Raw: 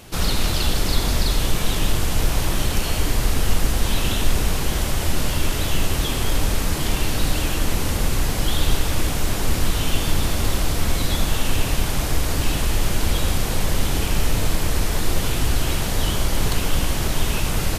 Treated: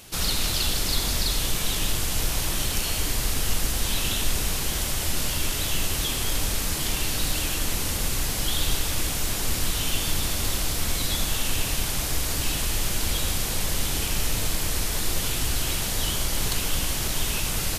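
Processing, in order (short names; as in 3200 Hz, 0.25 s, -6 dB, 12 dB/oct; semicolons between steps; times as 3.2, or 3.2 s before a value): high shelf 2300 Hz +10 dB; gain -7.5 dB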